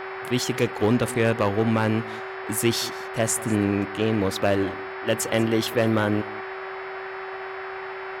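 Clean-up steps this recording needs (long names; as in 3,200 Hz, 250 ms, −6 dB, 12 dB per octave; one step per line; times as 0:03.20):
clipped peaks rebuilt −11.5 dBFS
hum removal 381.9 Hz, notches 14
noise reduction from a noise print 30 dB
echo removal 189 ms −20 dB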